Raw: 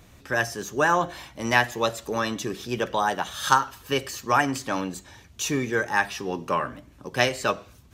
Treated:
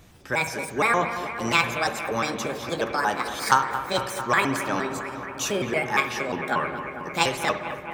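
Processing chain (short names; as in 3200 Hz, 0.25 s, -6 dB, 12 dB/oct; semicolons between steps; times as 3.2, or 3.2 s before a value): trilling pitch shifter +5.5 st, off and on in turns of 0.117 s; analogue delay 0.224 s, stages 4096, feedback 80%, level -11 dB; spring tank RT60 1.1 s, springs 58 ms, chirp 45 ms, DRR 10.5 dB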